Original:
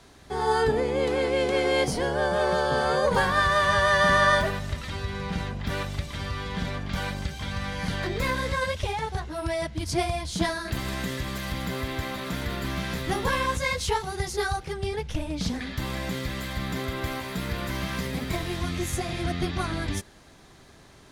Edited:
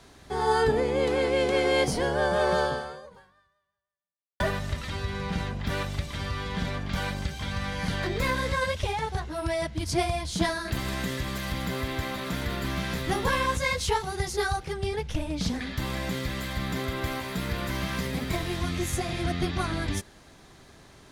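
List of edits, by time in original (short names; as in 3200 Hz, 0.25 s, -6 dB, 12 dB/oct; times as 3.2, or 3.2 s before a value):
2.64–4.4 fade out exponential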